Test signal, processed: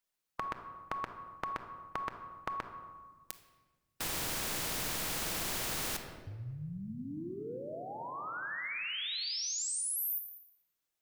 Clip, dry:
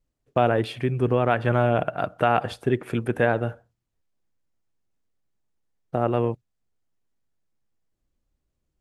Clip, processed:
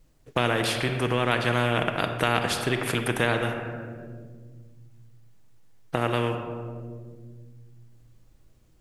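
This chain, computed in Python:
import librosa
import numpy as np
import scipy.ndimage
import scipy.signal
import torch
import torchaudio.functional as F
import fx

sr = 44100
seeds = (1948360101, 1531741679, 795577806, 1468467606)

y = fx.dynamic_eq(x, sr, hz=760.0, q=1.9, threshold_db=-34.0, ratio=4.0, max_db=-6)
y = fx.room_shoebox(y, sr, seeds[0], volume_m3=1100.0, walls='mixed', distance_m=0.6)
y = fx.spectral_comp(y, sr, ratio=2.0)
y = y * 10.0 ** (1.0 / 20.0)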